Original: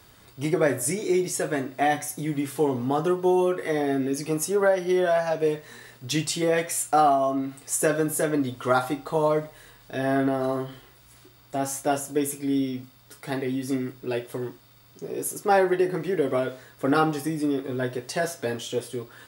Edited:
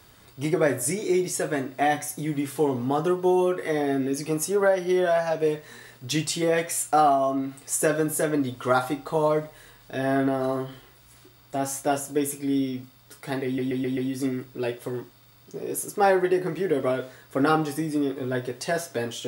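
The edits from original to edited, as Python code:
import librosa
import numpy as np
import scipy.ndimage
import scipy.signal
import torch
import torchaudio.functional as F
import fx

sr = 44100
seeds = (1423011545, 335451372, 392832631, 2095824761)

y = fx.edit(x, sr, fx.stutter(start_s=13.45, slice_s=0.13, count=5), tone=tone)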